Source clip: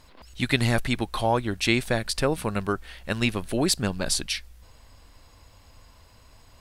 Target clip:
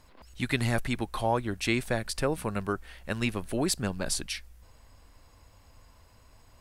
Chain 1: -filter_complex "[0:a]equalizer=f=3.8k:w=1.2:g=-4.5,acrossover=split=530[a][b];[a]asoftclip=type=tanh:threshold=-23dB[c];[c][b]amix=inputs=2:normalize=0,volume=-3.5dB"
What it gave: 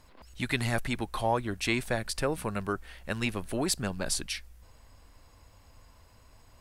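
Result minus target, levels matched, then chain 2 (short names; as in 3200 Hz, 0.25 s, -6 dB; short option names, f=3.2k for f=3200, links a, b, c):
soft clip: distortion +10 dB
-filter_complex "[0:a]equalizer=f=3.8k:w=1.2:g=-4.5,acrossover=split=530[a][b];[a]asoftclip=type=tanh:threshold=-15.5dB[c];[c][b]amix=inputs=2:normalize=0,volume=-3.5dB"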